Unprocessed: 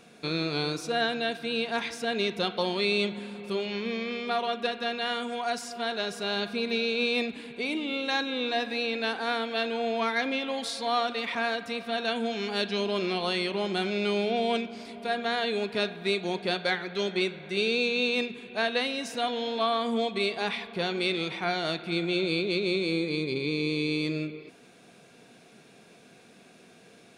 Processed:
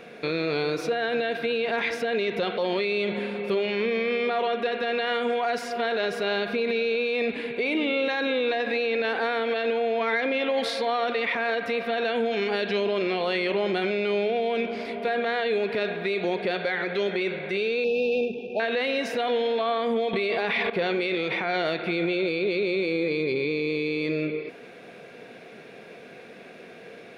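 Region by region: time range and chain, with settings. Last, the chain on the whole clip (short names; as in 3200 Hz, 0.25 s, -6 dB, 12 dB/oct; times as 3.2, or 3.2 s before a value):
17.84–18.6 sample-rate reducer 8700 Hz, jitter 20% + brick-wall FIR band-stop 910–2400 Hz + air absorption 280 m
20.13–20.7 notch 6700 Hz, Q 11 + fast leveller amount 70%
whole clip: graphic EQ 500/2000/8000 Hz +10/+9/-11 dB; limiter -21.5 dBFS; gain +4 dB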